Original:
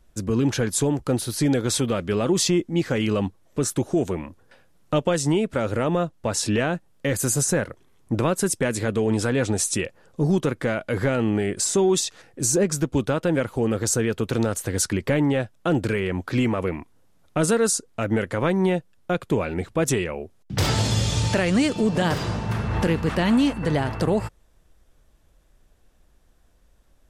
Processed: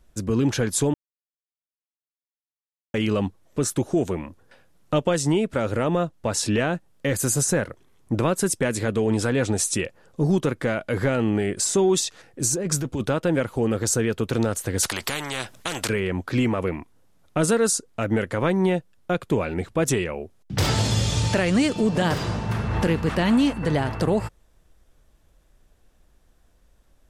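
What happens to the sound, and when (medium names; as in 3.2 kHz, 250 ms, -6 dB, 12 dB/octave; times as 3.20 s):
0.94–2.94 s: mute
12.47–13.10 s: compressor with a negative ratio -24 dBFS
14.83–15.89 s: spectrum-flattening compressor 4:1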